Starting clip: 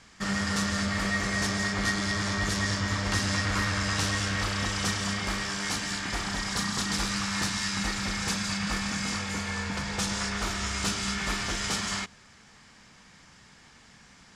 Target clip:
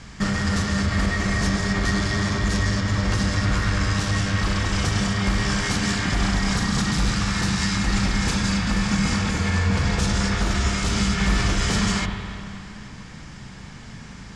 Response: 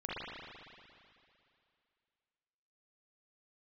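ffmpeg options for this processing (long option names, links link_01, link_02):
-filter_complex "[0:a]lowpass=9900,lowshelf=frequency=340:gain=8,alimiter=limit=-23dB:level=0:latency=1:release=129,asplit=2[link_01][link_02];[1:a]atrim=start_sample=2205,lowshelf=frequency=230:gain=9[link_03];[link_02][link_03]afir=irnorm=-1:irlink=0,volume=-6dB[link_04];[link_01][link_04]amix=inputs=2:normalize=0,volume=6dB"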